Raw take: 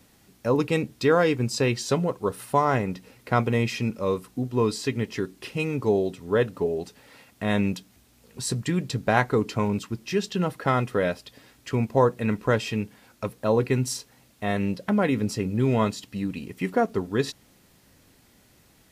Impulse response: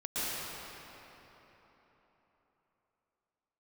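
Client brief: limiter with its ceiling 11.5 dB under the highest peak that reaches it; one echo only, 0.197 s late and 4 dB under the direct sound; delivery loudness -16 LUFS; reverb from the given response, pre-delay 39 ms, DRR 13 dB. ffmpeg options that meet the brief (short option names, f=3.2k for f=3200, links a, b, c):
-filter_complex "[0:a]alimiter=limit=-15.5dB:level=0:latency=1,aecho=1:1:197:0.631,asplit=2[a][b];[1:a]atrim=start_sample=2205,adelay=39[c];[b][c]afir=irnorm=-1:irlink=0,volume=-20.5dB[d];[a][d]amix=inputs=2:normalize=0,volume=10.5dB"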